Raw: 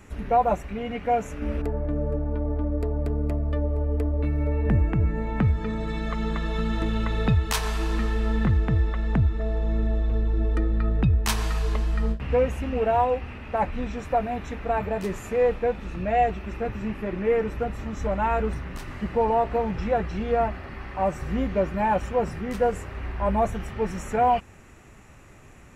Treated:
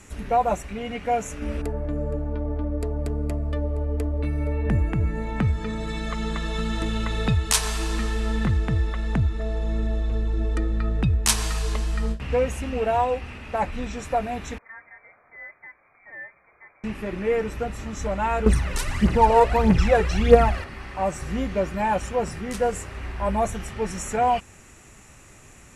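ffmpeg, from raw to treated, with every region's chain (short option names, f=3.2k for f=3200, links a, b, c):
-filter_complex "[0:a]asettb=1/sr,asplit=3[a][b][c];[a]atrim=end=14.584[d];[b]atrim=start=14.58:end=16.84,asetpts=PTS-STARTPTS,afade=t=in:d=0.004:c=qsin,afade=t=out:st=2.256:d=0.004:c=qsin,aderivative,lowpass=f=2.1k:t=q:w=0.5098,lowpass=f=2.1k:t=q:w=0.6013,lowpass=f=2.1k:t=q:w=0.9,lowpass=f=2.1k:t=q:w=2.563,afreqshift=-2500[e];[c]atrim=start=16.836[f];[d][e]acrossfade=d=0.004:c1=hsin:c2=qsin[g];[g][f]acrossfade=d=0.004:c1=qsin:c2=hsin,asettb=1/sr,asplit=3[h][i][j];[h]atrim=end=18.464[k];[i]atrim=start=18.46:end=20.64,asetpts=PTS-STARTPTS,afade=t=in:d=0.004:c=qsin,afade=t=out:st=2.176:d=0.004:c=qsin,acontrast=30,aphaser=in_gain=1:out_gain=1:delay=2.3:decay=0.63:speed=1.6:type=triangular[l];[j]atrim=start=20.636[m];[k][l]acrossfade=d=0.004:c1=hsin:c2=qsin[n];[n][m]acrossfade=d=0.004:c1=qsin:c2=hsin,lowpass=f=10k:w=0.5412,lowpass=f=10k:w=1.3066,aemphasis=mode=production:type=75fm"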